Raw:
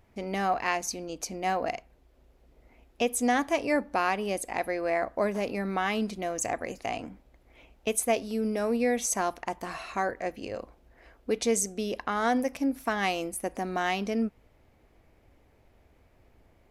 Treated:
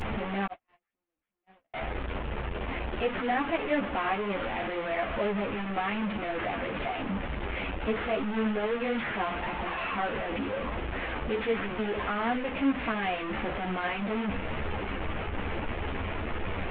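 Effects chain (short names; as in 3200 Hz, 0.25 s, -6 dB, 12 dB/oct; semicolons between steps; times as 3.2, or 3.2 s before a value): delta modulation 16 kbps, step -23.5 dBFS; 0.46–1.74 gate -21 dBFS, range -57 dB; ensemble effect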